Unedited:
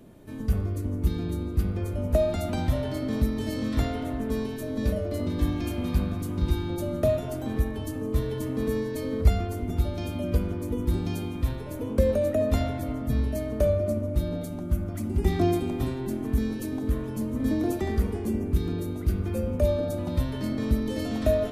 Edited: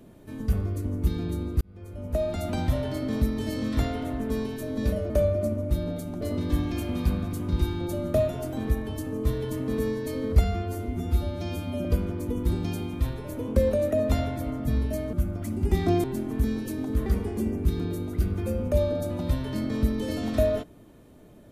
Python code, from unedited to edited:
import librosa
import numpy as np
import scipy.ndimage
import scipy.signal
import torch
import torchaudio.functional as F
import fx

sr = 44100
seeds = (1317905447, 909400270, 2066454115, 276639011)

y = fx.edit(x, sr, fx.fade_in_span(start_s=1.61, length_s=0.94),
    fx.stretch_span(start_s=9.33, length_s=0.94, factor=1.5),
    fx.move(start_s=13.55, length_s=1.11, to_s=5.1),
    fx.cut(start_s=15.57, length_s=0.41),
    fx.cut(start_s=17.0, length_s=0.94), tone=tone)